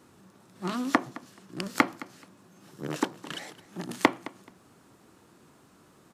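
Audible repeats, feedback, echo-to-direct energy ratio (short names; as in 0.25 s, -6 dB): 2, 19%, -19.0 dB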